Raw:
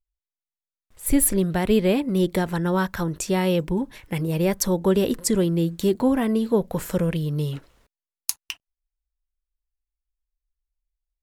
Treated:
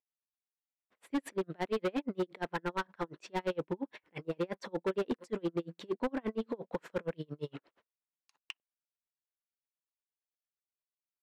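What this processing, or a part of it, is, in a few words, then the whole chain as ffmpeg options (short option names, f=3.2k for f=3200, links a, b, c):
helicopter radio: -af "highpass=320,lowpass=2.7k,aeval=exprs='val(0)*pow(10,-39*(0.5-0.5*cos(2*PI*8.6*n/s))/20)':c=same,asoftclip=type=hard:threshold=-27dB"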